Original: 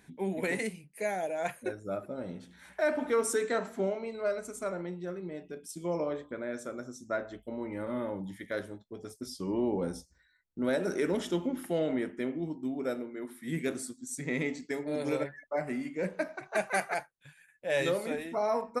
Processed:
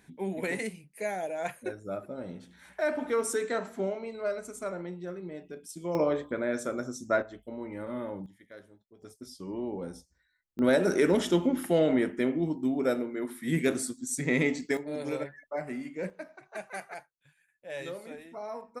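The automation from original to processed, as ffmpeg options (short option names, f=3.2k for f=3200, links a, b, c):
-af "asetnsamples=n=441:p=0,asendcmd='5.95 volume volume 6.5dB;7.22 volume volume -1.5dB;8.26 volume volume -14dB;9.02 volume volume -5dB;10.59 volume volume 6dB;14.77 volume volume -2dB;16.1 volume volume -9.5dB',volume=-0.5dB"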